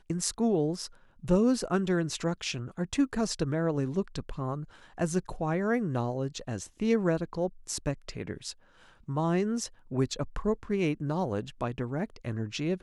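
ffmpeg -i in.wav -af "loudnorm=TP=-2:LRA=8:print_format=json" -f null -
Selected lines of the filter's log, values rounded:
"input_i" : "-31.1",
"input_tp" : "-11.7",
"input_lra" : "3.2",
"input_thresh" : "-41.3",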